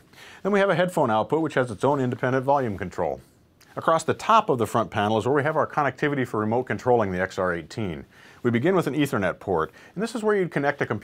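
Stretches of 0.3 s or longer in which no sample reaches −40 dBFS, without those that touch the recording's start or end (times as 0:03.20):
0:03.21–0:03.61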